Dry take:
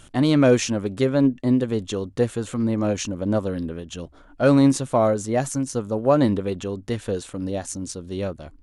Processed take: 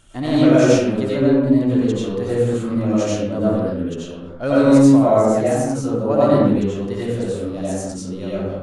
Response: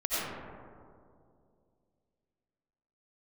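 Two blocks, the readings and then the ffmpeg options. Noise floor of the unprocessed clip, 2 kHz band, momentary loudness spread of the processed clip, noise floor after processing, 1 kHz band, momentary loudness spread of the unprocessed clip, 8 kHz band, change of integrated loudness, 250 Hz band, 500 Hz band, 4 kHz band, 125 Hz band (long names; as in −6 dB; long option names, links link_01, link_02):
−50 dBFS, +2.5 dB, 13 LU, −32 dBFS, +4.0 dB, 13 LU, −0.5 dB, +5.0 dB, +5.5 dB, +5.0 dB, +1.0 dB, +3.5 dB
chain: -filter_complex "[1:a]atrim=start_sample=2205,afade=type=out:start_time=0.4:duration=0.01,atrim=end_sample=18081[link_01];[0:a][link_01]afir=irnorm=-1:irlink=0,volume=-5.5dB"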